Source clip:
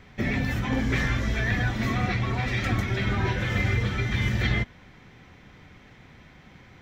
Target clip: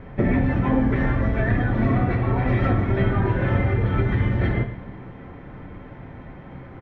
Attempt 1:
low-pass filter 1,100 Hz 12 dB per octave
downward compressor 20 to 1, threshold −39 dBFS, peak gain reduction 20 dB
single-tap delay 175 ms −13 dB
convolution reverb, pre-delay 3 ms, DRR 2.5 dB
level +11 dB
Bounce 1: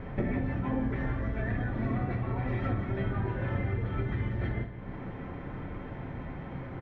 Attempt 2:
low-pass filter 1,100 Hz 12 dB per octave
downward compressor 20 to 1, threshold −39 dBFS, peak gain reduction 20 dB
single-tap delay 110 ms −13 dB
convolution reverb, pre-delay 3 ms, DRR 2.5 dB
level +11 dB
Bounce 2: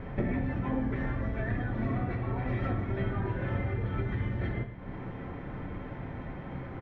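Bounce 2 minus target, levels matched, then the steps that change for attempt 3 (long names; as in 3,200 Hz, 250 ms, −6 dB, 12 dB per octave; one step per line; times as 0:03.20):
downward compressor: peak gain reduction +11 dB
change: downward compressor 20 to 1, threshold −27.5 dBFS, peak gain reduction 9 dB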